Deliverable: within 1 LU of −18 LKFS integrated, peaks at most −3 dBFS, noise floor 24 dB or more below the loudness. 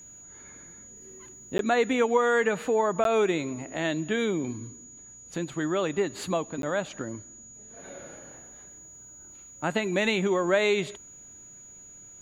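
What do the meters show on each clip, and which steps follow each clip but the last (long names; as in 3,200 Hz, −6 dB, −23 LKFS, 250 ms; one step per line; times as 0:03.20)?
number of dropouts 3; longest dropout 12 ms; interfering tone 6,800 Hz; level of the tone −46 dBFS; integrated loudness −27.0 LKFS; sample peak −10.0 dBFS; target loudness −18.0 LKFS
→ repair the gap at 0:01.58/0:03.04/0:06.62, 12 ms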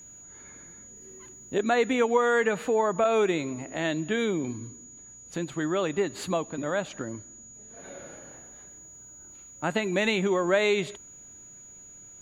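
number of dropouts 0; interfering tone 6,800 Hz; level of the tone −46 dBFS
→ notch filter 6,800 Hz, Q 30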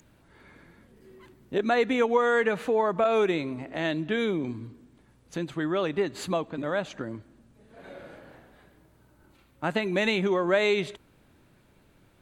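interfering tone none found; integrated loudness −27.0 LKFS; sample peak −10.0 dBFS; target loudness −18.0 LKFS
→ level +9 dB
brickwall limiter −3 dBFS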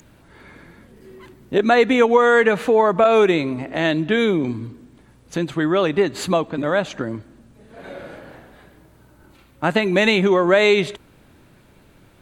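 integrated loudness −18.0 LKFS; sample peak −3.0 dBFS; background noise floor −52 dBFS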